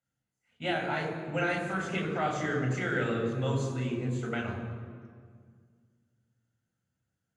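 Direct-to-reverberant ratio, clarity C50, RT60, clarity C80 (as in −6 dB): 0.0 dB, 5.0 dB, 1.9 s, 6.5 dB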